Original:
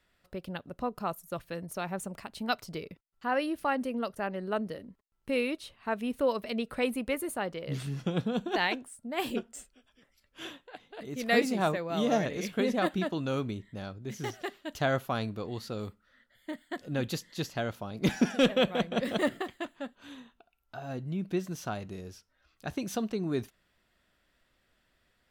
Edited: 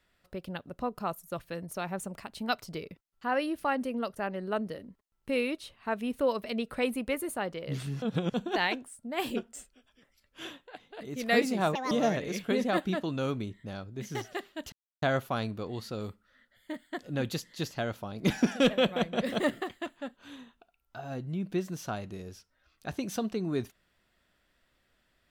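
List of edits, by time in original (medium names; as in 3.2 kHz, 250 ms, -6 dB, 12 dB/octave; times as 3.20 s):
8.02–8.34 s: reverse
11.75–12.00 s: speed 154%
14.81 s: insert silence 0.30 s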